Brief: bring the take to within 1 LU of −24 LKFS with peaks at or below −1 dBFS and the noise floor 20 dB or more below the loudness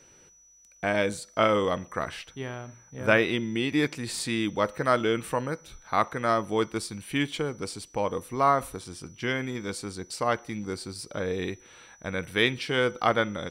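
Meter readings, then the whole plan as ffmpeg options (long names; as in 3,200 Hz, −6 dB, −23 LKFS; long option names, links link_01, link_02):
interfering tone 5,900 Hz; level of the tone −55 dBFS; integrated loudness −28.0 LKFS; sample peak −5.5 dBFS; target loudness −24.0 LKFS
→ -af "bandreject=frequency=5900:width=30"
-af "volume=4dB"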